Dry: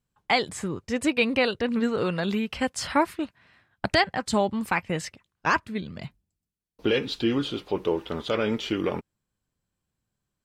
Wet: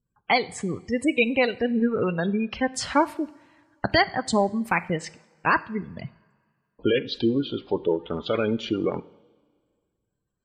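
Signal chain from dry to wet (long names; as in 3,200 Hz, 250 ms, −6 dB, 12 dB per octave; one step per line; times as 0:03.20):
gate on every frequency bin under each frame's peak −20 dB strong
transient designer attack 0 dB, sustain −5 dB
coupled-rooms reverb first 0.58 s, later 2 s, from −16 dB, DRR 15 dB
level +2 dB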